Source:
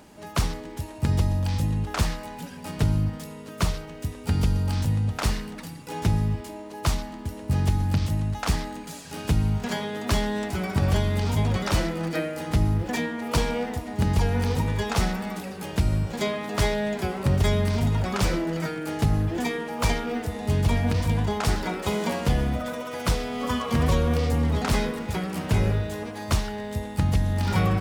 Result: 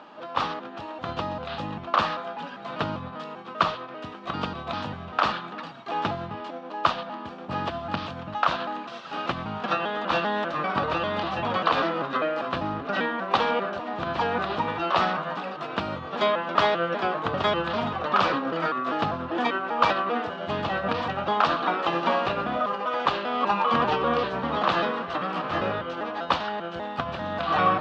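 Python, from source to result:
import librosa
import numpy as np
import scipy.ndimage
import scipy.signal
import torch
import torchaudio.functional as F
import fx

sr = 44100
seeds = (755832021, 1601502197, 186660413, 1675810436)

y = fx.pitch_trill(x, sr, semitones=-3.5, every_ms=197)
y = fx.cabinet(y, sr, low_hz=400.0, low_slope=12, high_hz=3500.0, hz=(410.0, 1200.0, 2100.0), db=(-7, 8, -9))
y = F.gain(torch.from_numpy(y), 7.0).numpy()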